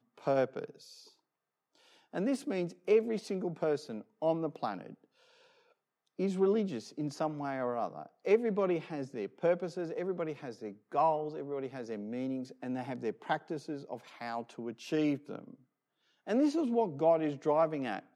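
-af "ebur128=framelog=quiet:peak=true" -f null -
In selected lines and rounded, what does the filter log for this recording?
Integrated loudness:
  I:         -33.8 LUFS
  Threshold: -44.5 LUFS
Loudness range:
  LRA:         4.8 LU
  Threshold: -55.1 LUFS
  LRA low:   -38.0 LUFS
  LRA high:  -33.2 LUFS
True peak:
  Peak:      -15.4 dBFS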